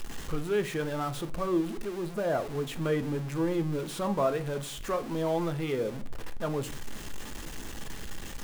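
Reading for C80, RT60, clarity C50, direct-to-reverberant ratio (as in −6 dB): 24.0 dB, 0.40 s, 18.5 dB, 9.0 dB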